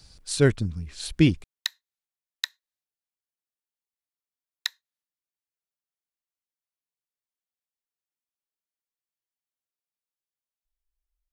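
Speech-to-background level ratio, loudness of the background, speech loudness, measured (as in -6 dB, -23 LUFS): 10.5 dB, -34.0 LUFS, -23.5 LUFS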